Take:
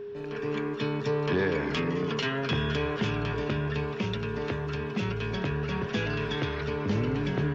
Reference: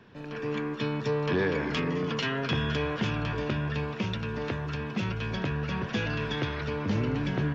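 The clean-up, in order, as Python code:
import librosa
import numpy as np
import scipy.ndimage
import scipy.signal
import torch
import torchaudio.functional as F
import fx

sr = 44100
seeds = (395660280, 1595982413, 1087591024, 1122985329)

y = fx.notch(x, sr, hz=410.0, q=30.0)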